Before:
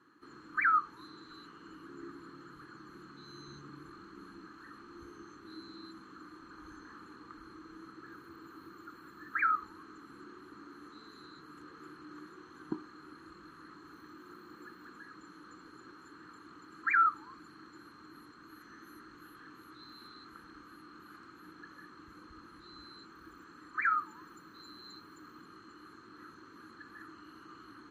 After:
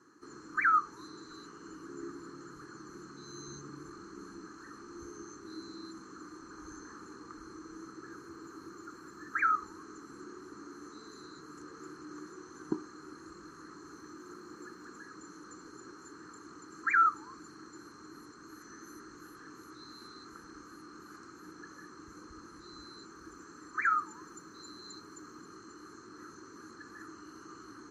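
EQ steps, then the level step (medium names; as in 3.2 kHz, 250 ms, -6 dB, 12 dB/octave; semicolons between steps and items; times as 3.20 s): distance through air 64 m; peaking EQ 410 Hz +5.5 dB 0.41 oct; resonant high shelf 4.5 kHz +10.5 dB, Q 3; +2.5 dB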